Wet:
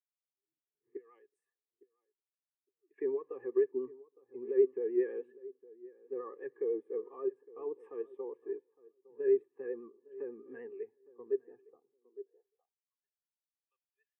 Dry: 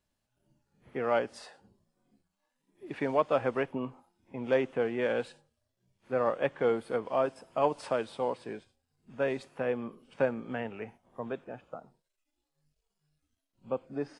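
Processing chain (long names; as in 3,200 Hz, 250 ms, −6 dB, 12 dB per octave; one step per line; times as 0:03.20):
0:00.97–0:02.98: first-order pre-emphasis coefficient 0.9
brickwall limiter −23 dBFS, peak gain reduction 9.5 dB
hollow resonant body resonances 400/1,200/1,700 Hz, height 15 dB, ringing for 35 ms
far-end echo of a speakerphone 370 ms, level −29 dB
pitch vibrato 10 Hz 56 cents
phaser with its sweep stopped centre 920 Hz, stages 8
feedback echo with a low-pass in the loop 860 ms, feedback 21%, low-pass 1,600 Hz, level −13.5 dB
on a send at −24 dB: convolution reverb RT60 0.45 s, pre-delay 6 ms
on the sum: high-pass filter sweep 160 Hz → 3,600 Hz, 0:11.82–0:13.47
every bin expanded away from the loudest bin 1.5 to 1
level −6 dB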